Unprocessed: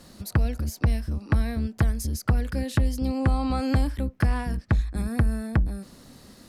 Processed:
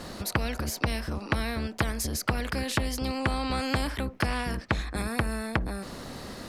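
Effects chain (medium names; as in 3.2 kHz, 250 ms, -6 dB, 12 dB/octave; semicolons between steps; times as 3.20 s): treble shelf 4.3 kHz -11 dB; spectrum-flattening compressor 2:1; trim +3 dB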